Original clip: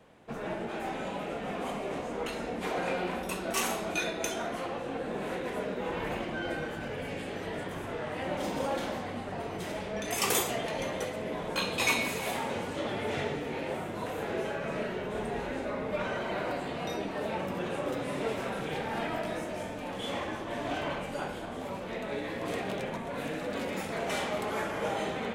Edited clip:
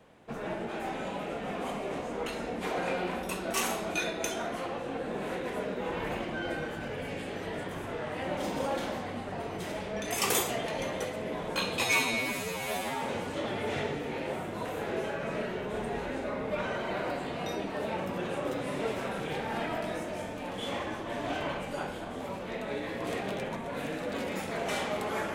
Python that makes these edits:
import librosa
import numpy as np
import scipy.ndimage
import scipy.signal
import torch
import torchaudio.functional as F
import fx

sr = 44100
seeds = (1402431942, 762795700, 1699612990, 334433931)

y = fx.edit(x, sr, fx.stretch_span(start_s=11.84, length_s=0.59, factor=2.0), tone=tone)